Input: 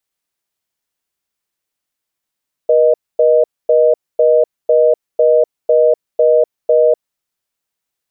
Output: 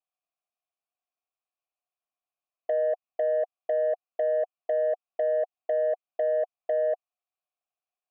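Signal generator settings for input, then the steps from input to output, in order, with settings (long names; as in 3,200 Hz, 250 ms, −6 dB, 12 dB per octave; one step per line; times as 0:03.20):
call progress tone reorder tone, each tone −10 dBFS 4.27 s
dynamic equaliser 470 Hz, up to −4 dB, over −20 dBFS, Q 0.7
formant filter a
soft clipping −17.5 dBFS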